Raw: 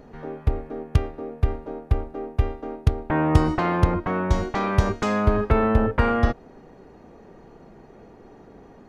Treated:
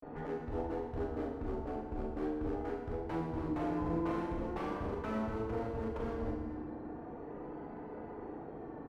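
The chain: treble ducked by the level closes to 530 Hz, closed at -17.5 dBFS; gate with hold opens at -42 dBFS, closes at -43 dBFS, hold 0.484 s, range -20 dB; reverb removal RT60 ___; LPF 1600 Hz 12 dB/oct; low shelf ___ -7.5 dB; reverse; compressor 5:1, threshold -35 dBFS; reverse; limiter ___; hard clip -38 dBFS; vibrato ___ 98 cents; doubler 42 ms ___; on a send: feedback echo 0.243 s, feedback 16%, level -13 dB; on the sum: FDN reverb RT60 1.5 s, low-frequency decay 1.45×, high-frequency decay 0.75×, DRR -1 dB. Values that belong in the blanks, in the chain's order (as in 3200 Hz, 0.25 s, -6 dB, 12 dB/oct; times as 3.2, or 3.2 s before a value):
0.61 s, 180 Hz, -29 dBFS, 0.42 Hz, -7 dB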